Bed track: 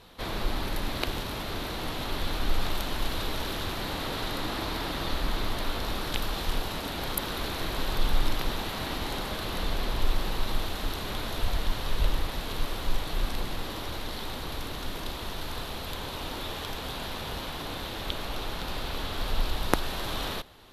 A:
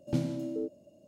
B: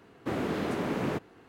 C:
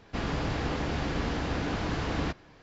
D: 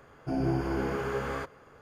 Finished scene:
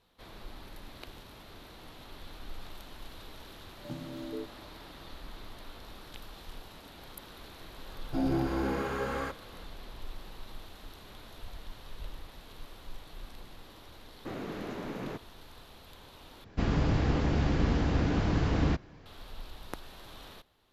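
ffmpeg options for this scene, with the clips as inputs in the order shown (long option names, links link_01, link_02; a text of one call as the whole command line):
ffmpeg -i bed.wav -i cue0.wav -i cue1.wav -i cue2.wav -i cue3.wav -filter_complex "[0:a]volume=-16.5dB[link_01];[1:a]alimiter=level_in=0.5dB:limit=-24dB:level=0:latency=1:release=325,volume=-0.5dB[link_02];[4:a]aecho=1:1:3.7:0.34[link_03];[2:a]aresample=16000,aresample=44100[link_04];[3:a]lowshelf=frequency=370:gain=9[link_05];[link_01]asplit=2[link_06][link_07];[link_06]atrim=end=16.444[link_08];[link_05]atrim=end=2.62,asetpts=PTS-STARTPTS,volume=-3dB[link_09];[link_07]atrim=start=19.056[link_10];[link_02]atrim=end=1.07,asetpts=PTS-STARTPTS,volume=-4.5dB,afade=type=in:duration=0.004:curve=hsin,afade=type=out:start_time=1.066:duration=0.004:curve=hsin,adelay=166257S[link_11];[link_03]atrim=end=1.81,asetpts=PTS-STARTPTS,volume=-1dB,afade=type=in:duration=0.004:curve=hsin,afade=type=out:start_time=1.806:duration=0.004:curve=hsin,adelay=346626S[link_12];[link_04]atrim=end=1.48,asetpts=PTS-STARTPTS,volume=-8dB,afade=type=in:duration=0.004:curve=hsin,afade=type=out:start_time=1.476:duration=0.004:curve=hsin,adelay=13990[link_13];[link_08][link_09]acrossfade=duration=0.004:curve1=hsin:curve2=hsin[link_14];[link_14][link_10]acrossfade=duration=0.004:curve1=hsin:curve2=hsin[link_15];[link_15][link_11][link_12][link_13]amix=inputs=4:normalize=0" out.wav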